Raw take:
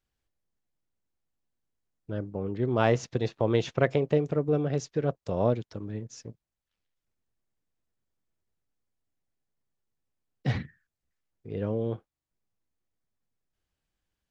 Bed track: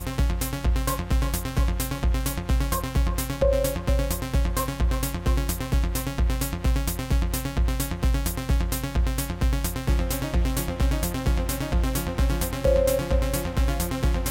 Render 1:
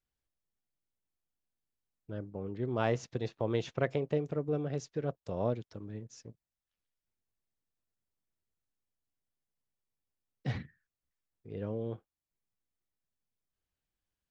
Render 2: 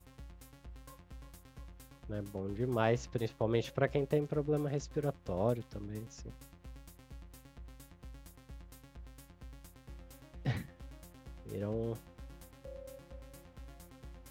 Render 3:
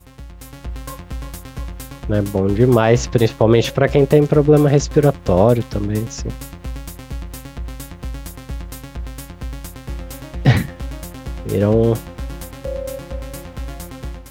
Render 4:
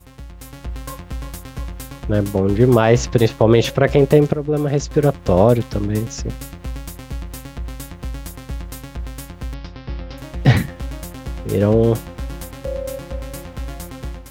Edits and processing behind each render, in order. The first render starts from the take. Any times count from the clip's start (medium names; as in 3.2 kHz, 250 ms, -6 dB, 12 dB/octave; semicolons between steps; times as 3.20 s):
trim -7 dB
add bed track -28 dB
level rider gain up to 9 dB; loudness maximiser +13.5 dB
4.33–5.31 s: fade in, from -12.5 dB; 6.06–6.60 s: band-stop 980 Hz, Q 6.9; 9.54–10.18 s: Chebyshev low-pass 5.3 kHz, order 5